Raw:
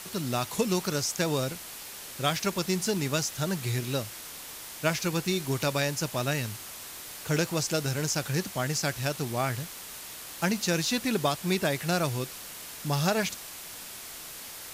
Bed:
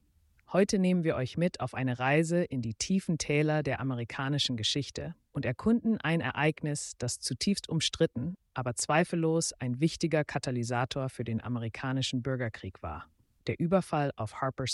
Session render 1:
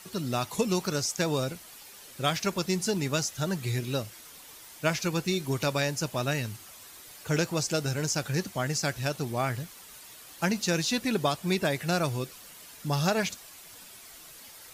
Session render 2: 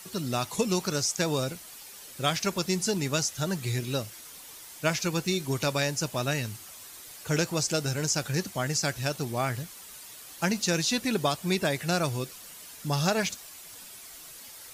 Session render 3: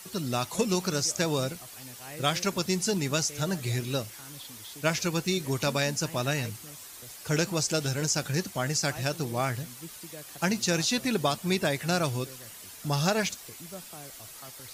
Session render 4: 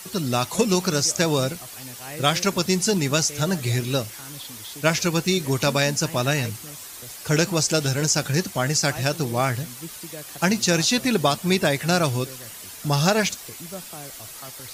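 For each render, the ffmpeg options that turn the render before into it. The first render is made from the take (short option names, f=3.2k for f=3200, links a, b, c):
-af "afftdn=nr=9:nf=-43"
-filter_complex "[0:a]highshelf=f=7.4k:g=8.5,acrossover=split=9700[a][b];[b]acompressor=threshold=-48dB:ratio=4:attack=1:release=60[c];[a][c]amix=inputs=2:normalize=0"
-filter_complex "[1:a]volume=-17.5dB[a];[0:a][a]amix=inputs=2:normalize=0"
-af "volume=6.5dB"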